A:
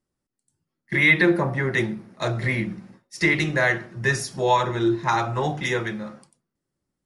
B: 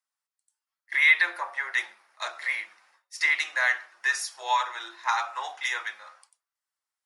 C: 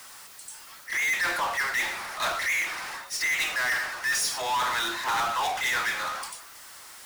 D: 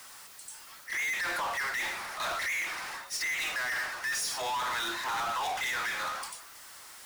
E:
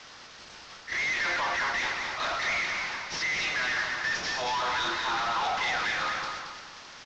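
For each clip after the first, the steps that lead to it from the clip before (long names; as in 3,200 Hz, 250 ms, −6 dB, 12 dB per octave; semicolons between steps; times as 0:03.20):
high-pass filter 890 Hz 24 dB per octave; level −1.5 dB
reversed playback; downward compressor, threshold −31 dBFS, peak gain reduction 15.5 dB; reversed playback; power curve on the samples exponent 0.35
brickwall limiter −25 dBFS, peak gain reduction 4.5 dB; level −3 dB
variable-slope delta modulation 32 kbit/s; repeating echo 224 ms, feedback 34%, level −5 dB; level +2.5 dB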